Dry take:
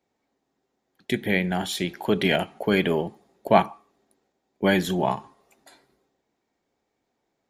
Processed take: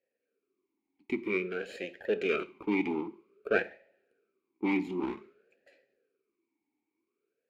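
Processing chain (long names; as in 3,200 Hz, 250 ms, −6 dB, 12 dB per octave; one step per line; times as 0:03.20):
lower of the sound and its delayed copy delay 0.42 ms
coupled-rooms reverb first 0.45 s, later 1.6 s, from −24 dB, DRR 13.5 dB
formant filter swept between two vowels e-u 0.52 Hz
level +4 dB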